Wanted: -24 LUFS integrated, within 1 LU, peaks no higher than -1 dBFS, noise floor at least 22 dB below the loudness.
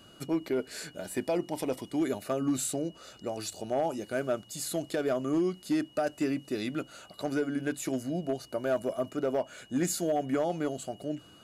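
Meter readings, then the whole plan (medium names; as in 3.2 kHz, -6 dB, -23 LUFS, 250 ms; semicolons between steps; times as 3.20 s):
clipped samples 0.5%; clipping level -21.5 dBFS; steady tone 2.9 kHz; tone level -57 dBFS; loudness -32.5 LUFS; peak level -21.5 dBFS; loudness target -24.0 LUFS
-> clip repair -21.5 dBFS; band-stop 2.9 kHz, Q 30; trim +8.5 dB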